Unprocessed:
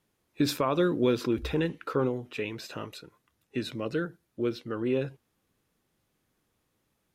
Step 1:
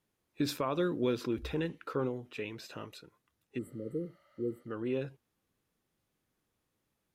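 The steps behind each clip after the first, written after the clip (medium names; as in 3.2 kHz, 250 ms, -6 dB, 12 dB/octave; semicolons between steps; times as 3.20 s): spectral replace 3.61–4.61 s, 550–7500 Hz after; trim -6 dB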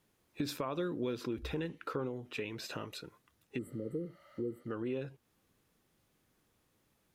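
compression 2.5:1, threshold -46 dBFS, peak gain reduction 13 dB; trim +7 dB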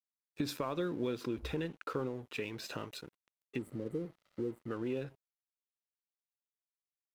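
crossover distortion -57 dBFS; trim +1 dB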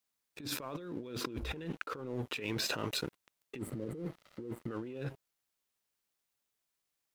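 compressor with a negative ratio -45 dBFS, ratio -1; trim +5 dB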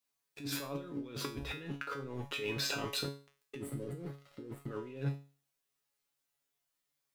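feedback comb 140 Hz, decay 0.36 s, harmonics all, mix 90%; trim +10.5 dB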